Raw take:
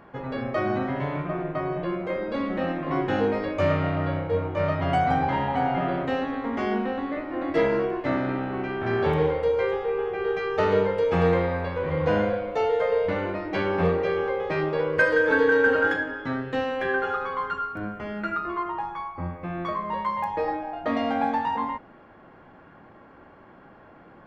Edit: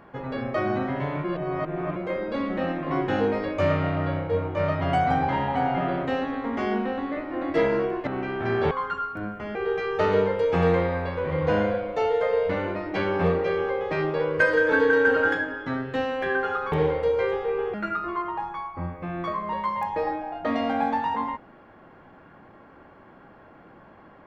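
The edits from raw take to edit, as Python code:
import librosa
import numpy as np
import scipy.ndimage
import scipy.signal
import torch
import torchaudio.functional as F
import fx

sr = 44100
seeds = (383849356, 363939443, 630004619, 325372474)

y = fx.edit(x, sr, fx.reverse_span(start_s=1.24, length_s=0.72),
    fx.cut(start_s=8.07, length_s=0.41),
    fx.swap(start_s=9.12, length_s=1.02, other_s=17.31, other_length_s=0.84), tone=tone)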